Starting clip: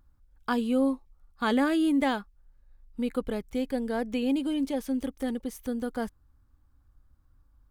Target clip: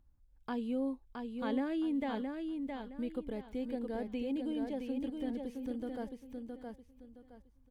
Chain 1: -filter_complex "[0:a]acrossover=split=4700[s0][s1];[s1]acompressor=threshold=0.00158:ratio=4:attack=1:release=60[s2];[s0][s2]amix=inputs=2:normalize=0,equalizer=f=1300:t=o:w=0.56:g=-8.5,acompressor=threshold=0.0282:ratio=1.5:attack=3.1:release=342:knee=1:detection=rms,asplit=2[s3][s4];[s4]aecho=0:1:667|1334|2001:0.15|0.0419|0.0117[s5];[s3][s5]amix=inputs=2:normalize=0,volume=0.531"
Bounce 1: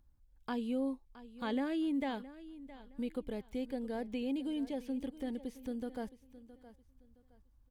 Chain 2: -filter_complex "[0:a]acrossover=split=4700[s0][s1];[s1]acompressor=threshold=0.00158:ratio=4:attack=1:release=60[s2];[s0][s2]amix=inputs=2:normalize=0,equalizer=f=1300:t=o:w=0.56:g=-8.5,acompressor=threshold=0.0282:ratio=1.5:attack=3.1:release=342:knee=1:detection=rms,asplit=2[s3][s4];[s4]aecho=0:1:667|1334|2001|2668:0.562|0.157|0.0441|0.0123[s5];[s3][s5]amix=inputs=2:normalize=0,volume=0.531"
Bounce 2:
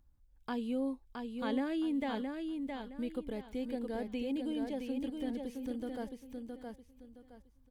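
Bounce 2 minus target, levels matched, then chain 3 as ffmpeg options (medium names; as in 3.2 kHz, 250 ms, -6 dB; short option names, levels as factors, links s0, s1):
4 kHz band +3.5 dB
-filter_complex "[0:a]acrossover=split=4700[s0][s1];[s1]acompressor=threshold=0.00158:ratio=4:attack=1:release=60[s2];[s0][s2]amix=inputs=2:normalize=0,equalizer=f=1300:t=o:w=0.56:g=-8.5,acompressor=threshold=0.0282:ratio=1.5:attack=3.1:release=342:knee=1:detection=rms,highshelf=f=2700:g=-6,asplit=2[s3][s4];[s4]aecho=0:1:667|1334|2001|2668:0.562|0.157|0.0441|0.0123[s5];[s3][s5]amix=inputs=2:normalize=0,volume=0.531"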